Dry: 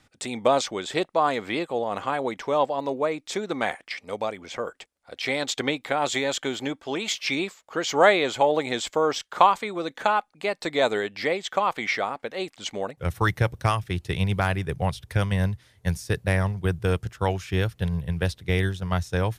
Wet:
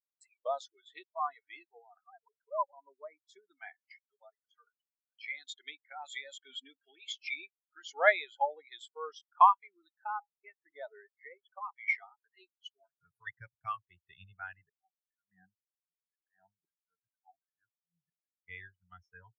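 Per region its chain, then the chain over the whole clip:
2.01–2.73 sine-wave speech + high shelf 2900 Hz -9.5 dB + notches 50/100/150/200/250/300/350/400/450 Hz
6.49–6.91 comb 4.3 ms, depth 56% + fast leveller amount 50%
9.96–11.73 air absorption 310 m + de-hum 164.9 Hz, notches 6
12.78–13.27 comb 7.1 ms, depth 94% + compressor 4:1, threshold -24 dBFS
14.69–18.44 auto swell 0.23 s + speaker cabinet 170–2300 Hz, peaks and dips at 270 Hz +8 dB, 760 Hz +9 dB, 1200 Hz -3 dB, 2000 Hz -5 dB
whole clip: spectral noise reduction 22 dB; tilt shelf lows -10 dB, about 810 Hz; spectral expander 2.5:1; gain -8 dB

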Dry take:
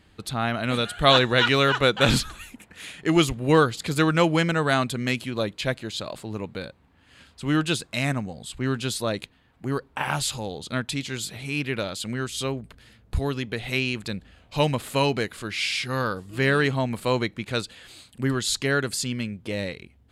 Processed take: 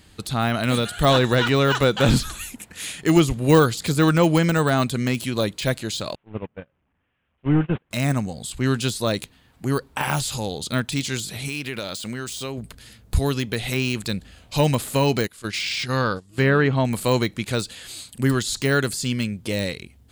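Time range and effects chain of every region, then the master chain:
6.15–7.91 delta modulation 16 kbps, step -37 dBFS + gate -31 dBFS, range -33 dB + air absorption 230 m
11.48–12.58 median filter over 3 samples + low shelf 170 Hz -7 dB + compressor 4:1, threshold -30 dBFS
15.27–16.85 gate -34 dBFS, range -15 dB + treble ducked by the level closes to 1800 Hz, closed at -17 dBFS
whole clip: de-esser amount 90%; tone controls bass +2 dB, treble +11 dB; gain +3.5 dB

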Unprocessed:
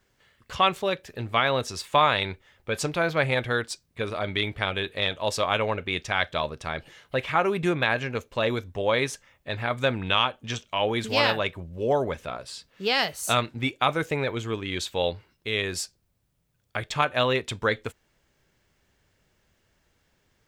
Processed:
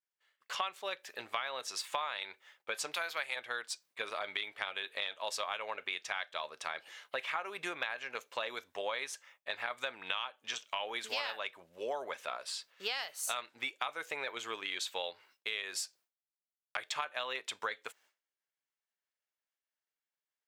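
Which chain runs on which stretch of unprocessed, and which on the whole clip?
2.94–3.36 tilt +3 dB/oct + notch 6000 Hz, Q 21
whole clip: expander -52 dBFS; HPF 780 Hz 12 dB/oct; compressor 6:1, threshold -34 dBFS

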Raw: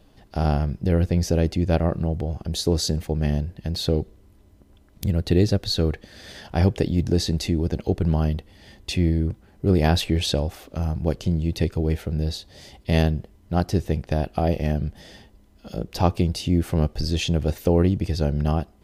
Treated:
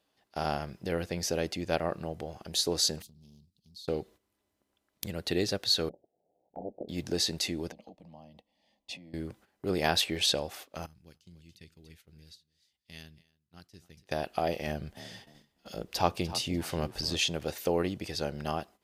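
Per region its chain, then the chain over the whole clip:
3.02–3.88 elliptic band-stop 240–3900 Hz + compressor 3:1, threshold -42 dBFS + Doppler distortion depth 0.27 ms
5.89–6.89 steep low-pass 690 Hz 72 dB/oct + low shelf 440 Hz -9.5 dB + ring modulator 98 Hz
7.72–9.14 LPF 1700 Hz 6 dB/oct + compressor 10:1, threshold -29 dBFS + fixed phaser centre 390 Hz, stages 6
10.86–14.06 passive tone stack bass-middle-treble 6-0-2 + echo 0.284 s -12.5 dB
14.67–17.17 low shelf 71 Hz +12 dB + frequency-shifting echo 0.296 s, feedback 31%, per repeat +35 Hz, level -15 dB
whole clip: gate -40 dBFS, range -12 dB; HPF 960 Hz 6 dB/oct

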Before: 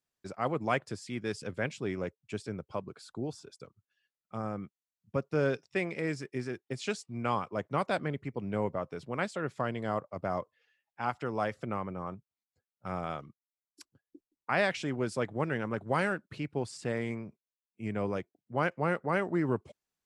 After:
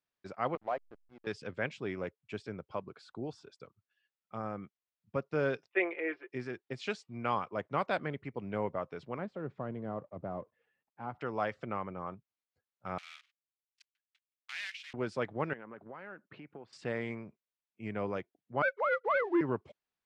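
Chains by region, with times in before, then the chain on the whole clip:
0.55–1.27 band-pass 680 Hz, Q 2.1 + backlash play -42.5 dBFS
5.68–6.3 elliptic band-pass 350–2900 Hz, stop band 50 dB + comb 5.8 ms, depth 83% + three-band expander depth 70%
9.18–11.21 G.711 law mismatch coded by mu + band-pass 180 Hz, Q 0.56
12.98–14.94 block floating point 3-bit + ladder high-pass 1800 Hz, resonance 25% + hard clip -29.5 dBFS
15.53–16.73 compressor 10:1, threshold -39 dBFS + BPF 170–2300 Hz
18.62–19.41 sine-wave speech + sample leveller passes 1
whole clip: LPF 3700 Hz 12 dB/oct; low shelf 380 Hz -6 dB

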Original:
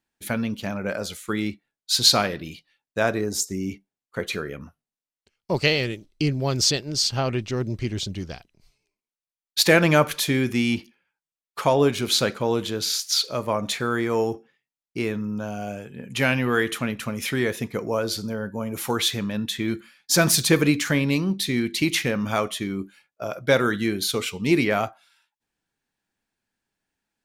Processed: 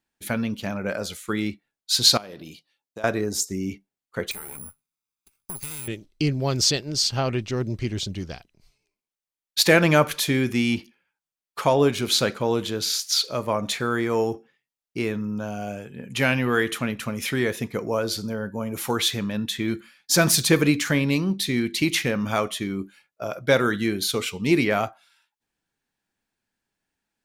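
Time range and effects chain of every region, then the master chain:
2.17–3.04 compressor 10:1, threshold -30 dBFS + HPF 250 Hz 6 dB/oct + bell 1900 Hz -8 dB 1.3 oct
4.31–5.88 minimum comb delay 0.81 ms + careless resampling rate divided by 4×, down none, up zero stuff + compressor 5:1, threshold -31 dBFS
whole clip: dry

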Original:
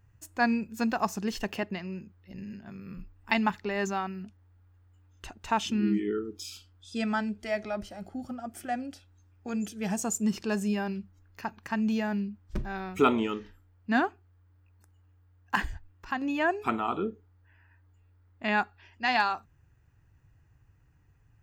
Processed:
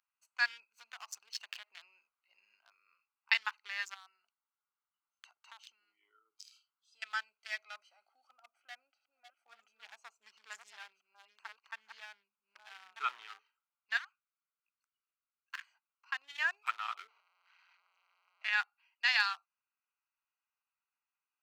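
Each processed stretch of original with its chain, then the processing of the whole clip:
0.78–2.71 notches 50/100/150 Hz + compressor 10:1, threshold -34 dBFS + sample leveller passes 1
3.94–7.02 compressor 8:1, threshold -36 dBFS + notch 2500 Hz, Q 6.6
8.32–13.39 reverse delay 0.673 s, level -5 dB + LPF 1100 Hz 6 dB/oct + bell 140 Hz +5 dB 1.4 oct
13.97–15.67 HPF 1200 Hz 24 dB/oct + compressor 4:1, threshold -34 dBFS
17.08–18.53 zero-crossing step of -37 dBFS + HPF 750 Hz 6 dB/oct + air absorption 180 m
whole clip: Wiener smoothing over 25 samples; HPF 1400 Hz 24 dB/oct; bell 4900 Hz +4 dB 1.2 oct

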